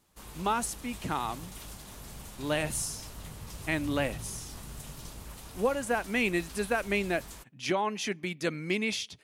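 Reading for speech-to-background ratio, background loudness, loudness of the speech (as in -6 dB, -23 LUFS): 13.0 dB, -44.5 LUFS, -31.5 LUFS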